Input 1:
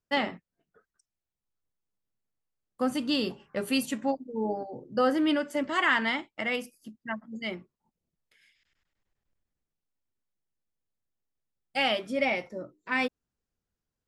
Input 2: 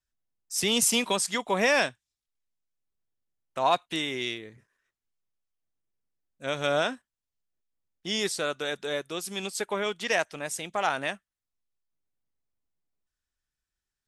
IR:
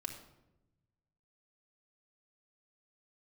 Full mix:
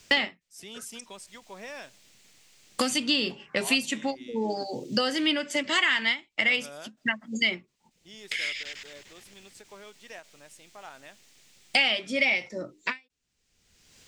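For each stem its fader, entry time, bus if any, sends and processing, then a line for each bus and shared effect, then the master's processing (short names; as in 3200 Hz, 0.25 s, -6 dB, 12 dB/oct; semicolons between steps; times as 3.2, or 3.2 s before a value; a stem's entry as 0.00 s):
-2.5 dB, 0.00 s, no send, band shelf 4000 Hz +12 dB 2.4 oct; three-band squash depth 100%
-19.0 dB, 0.00 s, send -18 dB, dry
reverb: on, RT60 0.95 s, pre-delay 3 ms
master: ending taper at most 290 dB/s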